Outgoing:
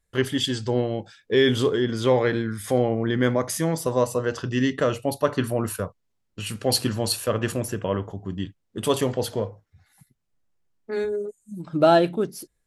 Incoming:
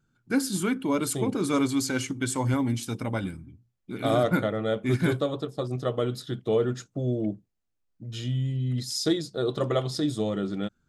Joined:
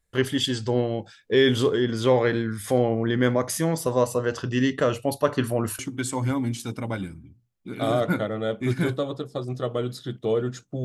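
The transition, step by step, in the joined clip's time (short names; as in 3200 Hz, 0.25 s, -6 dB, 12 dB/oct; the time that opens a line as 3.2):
outgoing
5.79 switch to incoming from 2.02 s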